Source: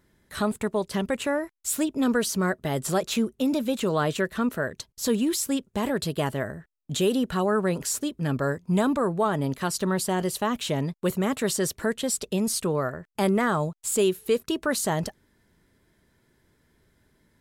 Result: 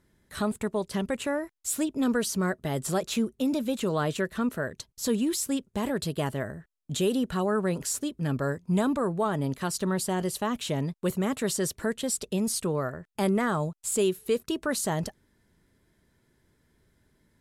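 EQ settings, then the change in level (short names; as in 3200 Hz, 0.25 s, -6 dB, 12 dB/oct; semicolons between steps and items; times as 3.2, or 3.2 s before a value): LPF 12000 Hz 12 dB/oct; low shelf 330 Hz +3 dB; high shelf 9300 Hz +6 dB; -4.0 dB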